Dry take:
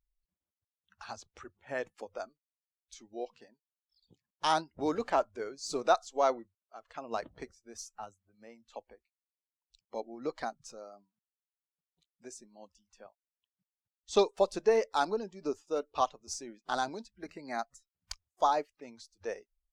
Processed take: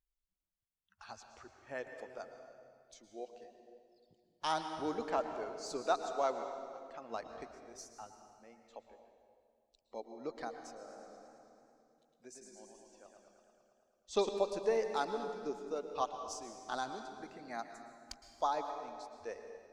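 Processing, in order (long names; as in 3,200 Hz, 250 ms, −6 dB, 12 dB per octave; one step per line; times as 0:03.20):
convolution reverb RT60 2.2 s, pre-delay 106 ms, DRR 6.5 dB
0:10.76–0:14.29: feedback echo with a swinging delay time 110 ms, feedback 73%, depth 92 cents, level −4.5 dB
level −6.5 dB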